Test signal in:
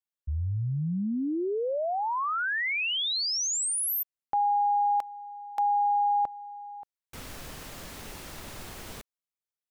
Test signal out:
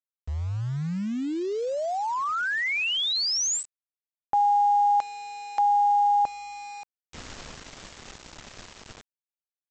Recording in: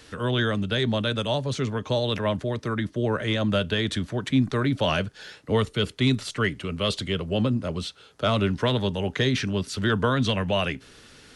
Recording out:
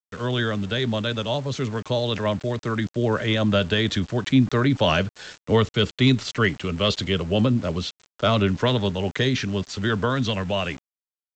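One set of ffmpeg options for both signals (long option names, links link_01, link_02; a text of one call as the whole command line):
ffmpeg -i in.wav -af "dynaudnorm=framelen=260:gausssize=21:maxgain=4dB,aresample=16000,aeval=exprs='val(0)*gte(abs(val(0)),0.0119)':channel_layout=same,aresample=44100" out.wav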